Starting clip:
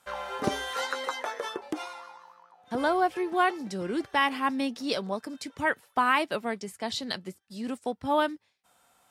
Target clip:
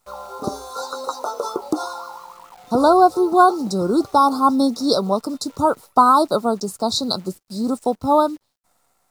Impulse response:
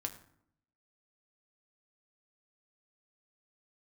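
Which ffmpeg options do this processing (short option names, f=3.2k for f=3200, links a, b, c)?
-af "dynaudnorm=f=310:g=9:m=15dB,asuperstop=centerf=2300:order=20:qfactor=0.99,acrusher=bits=9:dc=4:mix=0:aa=0.000001,volume=2dB"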